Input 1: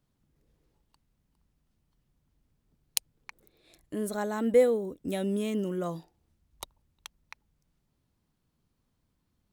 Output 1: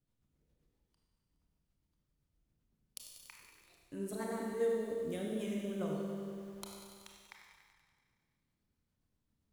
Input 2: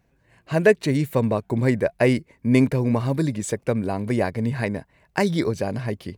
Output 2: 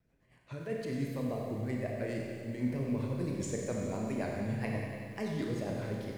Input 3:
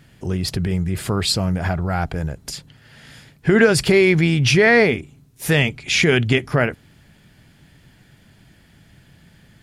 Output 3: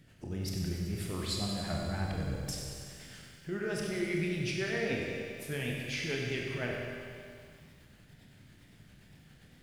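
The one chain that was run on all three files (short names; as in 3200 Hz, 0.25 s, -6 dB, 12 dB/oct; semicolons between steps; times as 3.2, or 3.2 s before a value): reverse; compressor, threshold -25 dBFS; reverse; tremolo triangle 10 Hz, depth 45%; rotary speaker horn 7.5 Hz; wow and flutter 150 cents; Schroeder reverb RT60 1.9 s, combs from 25 ms, DRR -0.5 dB; lo-fi delay 95 ms, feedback 80%, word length 9-bit, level -11 dB; gain -6 dB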